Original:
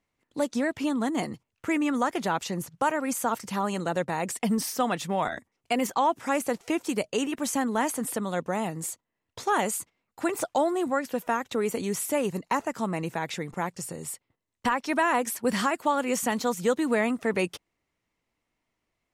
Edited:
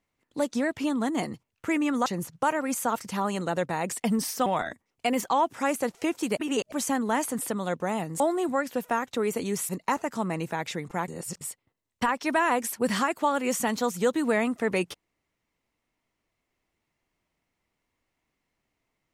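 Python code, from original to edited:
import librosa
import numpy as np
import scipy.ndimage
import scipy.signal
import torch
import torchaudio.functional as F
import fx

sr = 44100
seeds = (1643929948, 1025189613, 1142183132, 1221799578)

y = fx.edit(x, sr, fx.cut(start_s=2.06, length_s=0.39),
    fx.cut(start_s=4.85, length_s=0.27),
    fx.reverse_span(start_s=7.03, length_s=0.35),
    fx.cut(start_s=8.86, length_s=1.72),
    fx.cut(start_s=12.07, length_s=0.25),
    fx.reverse_span(start_s=13.71, length_s=0.33), tone=tone)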